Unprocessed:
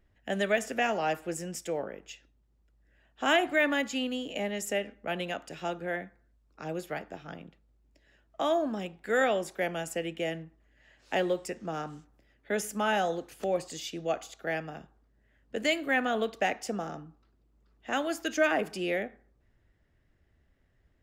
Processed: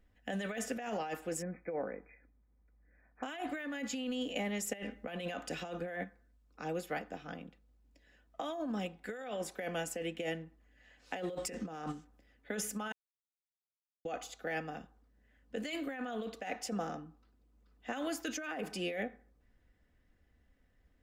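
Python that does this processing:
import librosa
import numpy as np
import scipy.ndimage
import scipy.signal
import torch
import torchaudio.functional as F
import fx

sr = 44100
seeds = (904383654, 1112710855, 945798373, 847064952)

y = fx.brickwall_lowpass(x, sr, high_hz=2500.0, at=(1.42, 3.23))
y = fx.over_compress(y, sr, threshold_db=-39.0, ratio=-1.0, at=(4.73, 6.04))
y = fx.over_compress(y, sr, threshold_db=-43.0, ratio=-1.0, at=(11.33, 11.91), fade=0.02)
y = fx.edit(y, sr, fx.silence(start_s=12.92, length_s=1.13), tone=tone)
y = y + 0.45 * np.pad(y, (int(4.0 * sr / 1000.0), 0))[:len(y)]
y = fx.over_compress(y, sr, threshold_db=-32.0, ratio=-1.0)
y = F.gain(torch.from_numpy(y), -5.5).numpy()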